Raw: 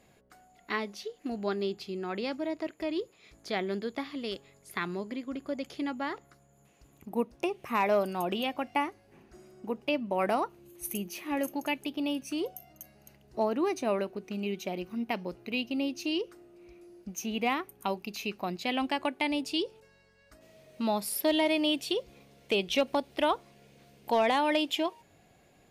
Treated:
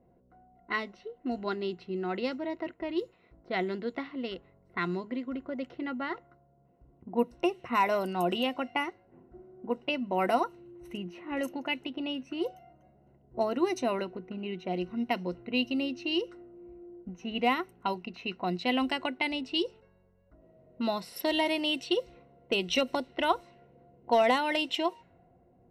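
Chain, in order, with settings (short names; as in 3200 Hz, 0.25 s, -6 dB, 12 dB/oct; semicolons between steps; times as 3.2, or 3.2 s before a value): ripple EQ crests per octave 2, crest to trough 10 dB; low-pass opened by the level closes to 610 Hz, open at -25 dBFS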